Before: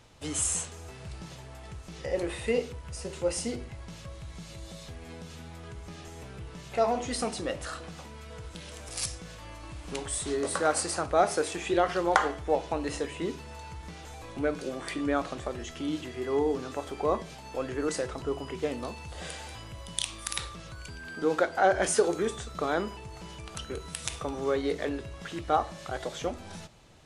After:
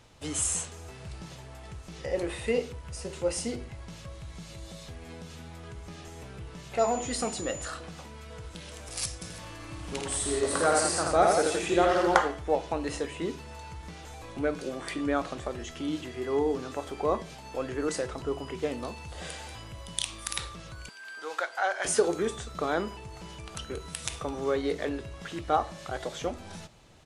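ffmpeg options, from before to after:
ffmpeg -i in.wav -filter_complex "[0:a]asettb=1/sr,asplit=3[link_01][link_02][link_03];[link_01]atrim=end=6.794[link_04];[link_02]atrim=start=6.79:end=7.68,asetpts=PTS-STARTPTS,afade=type=in:duration=0.004:curve=qsin,afade=type=out:start_time=0.886:duration=0.004:curve=qsin,aeval=exprs='val(0)+0.01*sin(2*PI*7000*n/s)':channel_layout=same[link_05];[link_03]atrim=start=7.676[link_06];[link_04][link_05]acrossfade=duration=0.004:curve1=hsin:curve2=qsin[link_07];[link_07][link_06]acrossfade=duration=0.004:curve1=qsin:curve2=hsin,asplit=3[link_08][link_09][link_10];[link_08]afade=type=out:start_time=9.21:duration=0.02[link_11];[link_09]aecho=1:1:52|82|170|327:0.447|0.708|0.501|0.126,afade=type=in:start_time=9.21:duration=0.02,afade=type=out:start_time=12.19:duration=0.02[link_12];[link_10]afade=type=in:start_time=12.19:duration=0.02[link_13];[link_11][link_12][link_13]amix=inputs=3:normalize=0,asettb=1/sr,asplit=3[link_14][link_15][link_16];[link_14]atrim=end=20.894[link_17];[link_15]atrim=start=20.89:end=21.85,asetpts=PTS-STARTPTS,afade=type=in:duration=0.004:curve=qsin,afade=type=out:start_time=0.956:duration=0.004:curve=qsin,highpass=940[link_18];[link_16]atrim=start=21.846[link_19];[link_17][link_18]acrossfade=duration=0.004:curve1=hsin:curve2=qsin[link_20];[link_20][link_19]acrossfade=duration=0.004:curve1=qsin:curve2=hsin" out.wav

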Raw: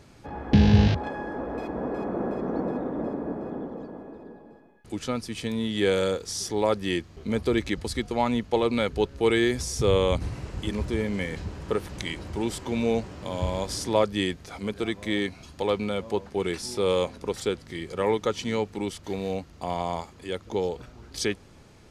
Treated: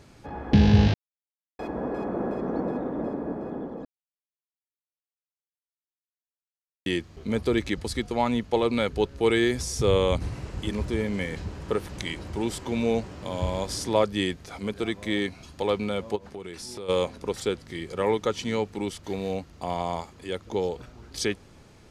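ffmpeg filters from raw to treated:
ffmpeg -i in.wav -filter_complex "[0:a]asplit=3[link_01][link_02][link_03];[link_01]afade=type=out:start_time=16.15:duration=0.02[link_04];[link_02]acompressor=threshold=-35dB:ratio=5:attack=3.2:release=140:knee=1:detection=peak,afade=type=in:start_time=16.15:duration=0.02,afade=type=out:start_time=16.88:duration=0.02[link_05];[link_03]afade=type=in:start_time=16.88:duration=0.02[link_06];[link_04][link_05][link_06]amix=inputs=3:normalize=0,asplit=5[link_07][link_08][link_09][link_10][link_11];[link_07]atrim=end=0.94,asetpts=PTS-STARTPTS,afade=type=out:start_time=0.936:duration=0.004:curve=hsin[link_12];[link_08]atrim=start=0.94:end=1.59,asetpts=PTS-STARTPTS,volume=0[link_13];[link_09]atrim=start=1.59:end=3.85,asetpts=PTS-STARTPTS,afade=type=in:duration=0.004:curve=hsin,afade=type=out:start_time=2.256:duration=0.004:curve=hsin[link_14];[link_10]atrim=start=3.85:end=6.86,asetpts=PTS-STARTPTS,volume=0[link_15];[link_11]atrim=start=6.86,asetpts=PTS-STARTPTS,afade=type=in:duration=0.004:curve=hsin[link_16];[link_12][link_13][link_14][link_15][link_16]concat=n=5:v=0:a=1" out.wav

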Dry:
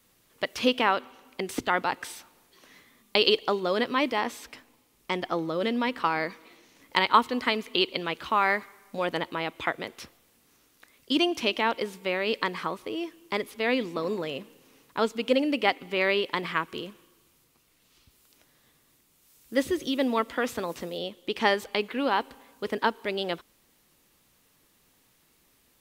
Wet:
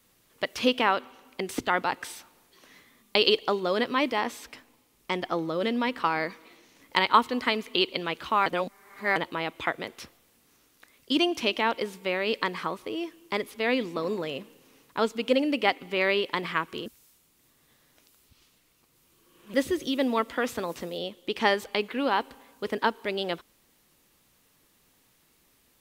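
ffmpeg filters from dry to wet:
ffmpeg -i in.wav -filter_complex "[0:a]asplit=5[link_01][link_02][link_03][link_04][link_05];[link_01]atrim=end=8.462[link_06];[link_02]atrim=start=8.458:end=9.162,asetpts=PTS-STARTPTS,areverse[link_07];[link_03]atrim=start=9.158:end=16.862[link_08];[link_04]atrim=start=16.858:end=19.542,asetpts=PTS-STARTPTS,areverse[link_09];[link_05]atrim=start=19.538[link_10];[link_06][link_07]acrossfade=duration=0.004:curve1=hsin:curve2=hsin[link_11];[link_11][link_08]acrossfade=duration=0.004:curve1=hsin:curve2=hsin[link_12];[link_12][link_09]acrossfade=duration=0.004:curve1=hsin:curve2=hsin[link_13];[link_13][link_10]acrossfade=duration=0.004:curve1=hsin:curve2=hsin" out.wav

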